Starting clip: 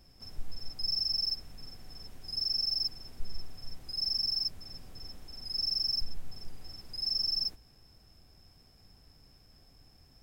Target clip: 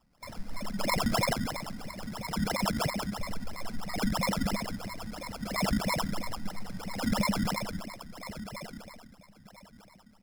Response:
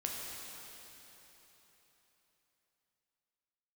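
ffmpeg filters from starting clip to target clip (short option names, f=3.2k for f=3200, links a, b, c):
-filter_complex "[0:a]acontrast=65,agate=range=-12dB:threshold=-43dB:ratio=16:detection=peak[a];[1:a]atrim=start_sample=2205,asetrate=79380,aresample=44100[b];[a][b]afir=irnorm=-1:irlink=0,alimiter=limit=-22.5dB:level=0:latency=1:release=123,asetnsamples=n=441:p=0,asendcmd='1.33 highshelf g 5',highshelf=f=5k:g=11.5,aecho=1:1:1189|2378|3567:0.282|0.062|0.0136,flanger=delay=9.9:depth=1:regen=-72:speed=0.21:shape=triangular,acrusher=samples=20:mix=1:aa=0.000001:lfo=1:lforange=12:lforate=3,equalizer=f=200:t=o:w=0.33:g=9,equalizer=f=400:t=o:w=0.33:g=-10,equalizer=f=2k:t=o:w=0.33:g=5,equalizer=f=3.15k:t=o:w=0.33:g=-4,equalizer=f=5k:t=o:w=0.33:g=9,equalizer=f=10k:t=o:w=0.33:g=4,volume=1.5dB"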